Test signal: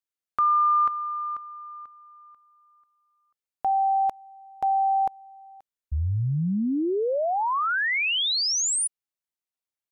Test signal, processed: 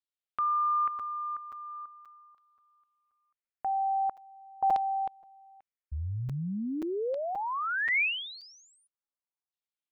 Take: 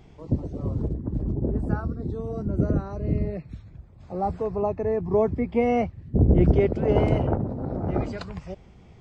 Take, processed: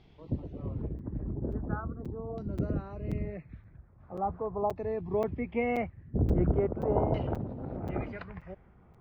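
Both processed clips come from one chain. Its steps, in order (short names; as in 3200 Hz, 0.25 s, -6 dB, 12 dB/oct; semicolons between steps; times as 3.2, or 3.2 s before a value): LFO low-pass saw down 0.42 Hz 880–4100 Hz; crackling interface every 0.53 s, samples 256, zero, from 0.99; gain -8.5 dB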